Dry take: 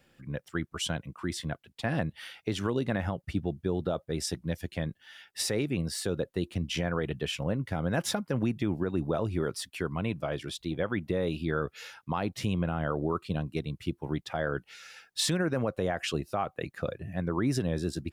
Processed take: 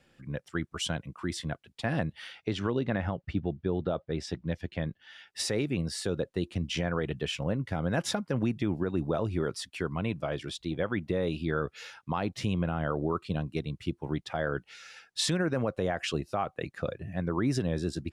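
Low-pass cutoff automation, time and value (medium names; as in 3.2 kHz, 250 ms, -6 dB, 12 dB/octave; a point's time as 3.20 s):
2.01 s 10 kHz
2.80 s 3.8 kHz
4.86 s 3.8 kHz
5.40 s 8.8 kHz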